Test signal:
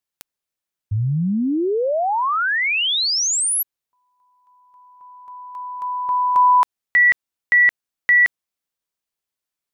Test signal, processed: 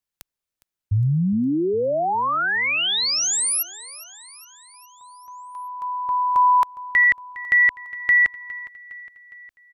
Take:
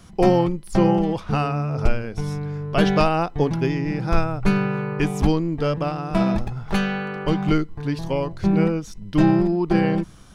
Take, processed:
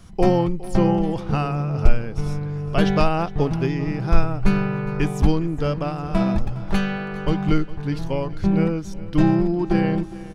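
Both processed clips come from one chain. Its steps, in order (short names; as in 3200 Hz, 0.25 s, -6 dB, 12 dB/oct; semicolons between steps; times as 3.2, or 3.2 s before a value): low shelf 94 Hz +8.5 dB; on a send: feedback echo 0.41 s, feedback 56%, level -18 dB; on the sum: gain -2 dB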